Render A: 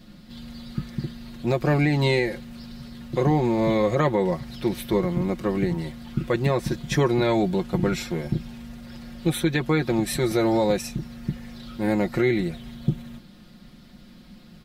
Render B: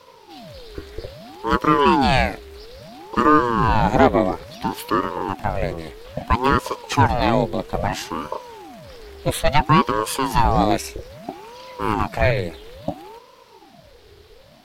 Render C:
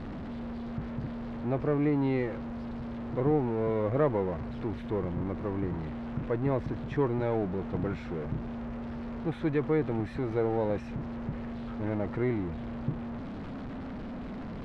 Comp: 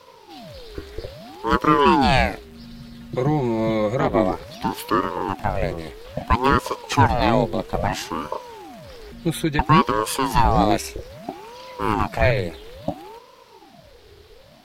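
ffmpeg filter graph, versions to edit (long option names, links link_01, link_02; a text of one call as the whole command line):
ffmpeg -i take0.wav -i take1.wav -filter_complex "[0:a]asplit=2[link_01][link_02];[1:a]asplit=3[link_03][link_04][link_05];[link_03]atrim=end=2.62[link_06];[link_01]atrim=start=2.38:end=4.2[link_07];[link_04]atrim=start=3.96:end=9.122[link_08];[link_02]atrim=start=9.118:end=9.592[link_09];[link_05]atrim=start=9.588[link_10];[link_06][link_07]acrossfade=duration=0.24:curve1=tri:curve2=tri[link_11];[link_11][link_08]acrossfade=duration=0.24:curve1=tri:curve2=tri[link_12];[link_12][link_09]acrossfade=duration=0.004:curve1=hsin:curve2=hsin[link_13];[link_13][link_10]acrossfade=duration=0.004:curve1=hsin:curve2=hsin" out.wav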